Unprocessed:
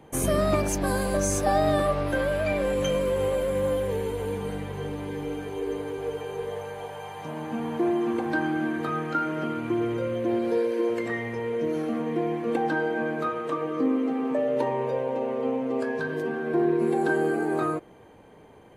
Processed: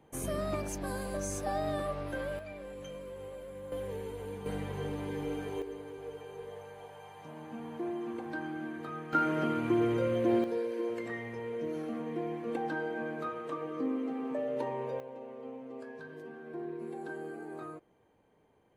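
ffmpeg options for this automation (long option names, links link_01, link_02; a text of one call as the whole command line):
ffmpeg -i in.wav -af "asetnsamples=nb_out_samples=441:pad=0,asendcmd='2.39 volume volume -19dB;3.72 volume volume -11dB;4.46 volume volume -4dB;5.62 volume volume -12dB;9.13 volume volume -1.5dB;10.44 volume volume -9dB;15 volume volume -17dB',volume=-11dB" out.wav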